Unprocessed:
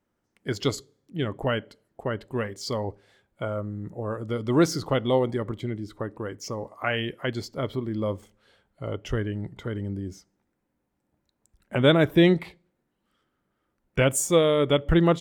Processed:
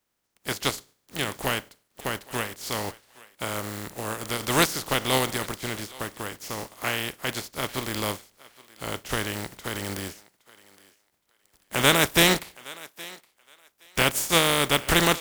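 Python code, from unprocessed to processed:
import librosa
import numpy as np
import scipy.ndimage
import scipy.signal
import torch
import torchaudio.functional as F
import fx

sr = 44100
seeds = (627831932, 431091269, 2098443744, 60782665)

y = fx.spec_flatten(x, sr, power=0.33)
y = fx.echo_thinned(y, sr, ms=818, feedback_pct=19, hz=480.0, wet_db=-20)
y = y * 10.0 ** (-1.0 / 20.0)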